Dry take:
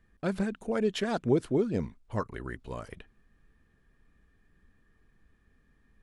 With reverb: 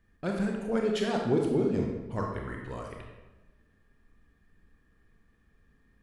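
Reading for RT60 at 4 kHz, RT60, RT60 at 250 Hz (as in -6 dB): 0.75 s, 1.1 s, 1.3 s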